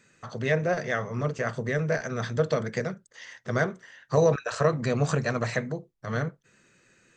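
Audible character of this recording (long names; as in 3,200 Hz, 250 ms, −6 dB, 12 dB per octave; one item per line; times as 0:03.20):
background noise floor −66 dBFS
spectral slope −6.0 dB per octave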